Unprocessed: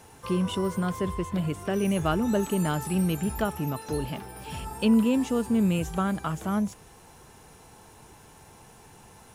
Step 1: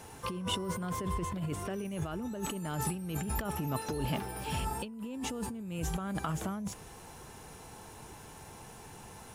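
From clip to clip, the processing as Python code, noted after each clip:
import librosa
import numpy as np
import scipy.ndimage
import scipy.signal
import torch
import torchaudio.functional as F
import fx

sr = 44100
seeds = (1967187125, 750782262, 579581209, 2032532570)

y = fx.over_compress(x, sr, threshold_db=-32.0, ratio=-1.0)
y = y * librosa.db_to_amplitude(-3.5)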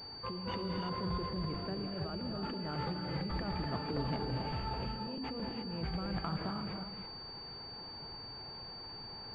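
y = fx.rev_gated(x, sr, seeds[0], gate_ms=360, shape='rising', drr_db=2.0)
y = fx.buffer_crackle(y, sr, first_s=0.77, period_s=0.11, block=256, kind='repeat')
y = fx.pwm(y, sr, carrier_hz=4600.0)
y = y * librosa.db_to_amplitude(-4.0)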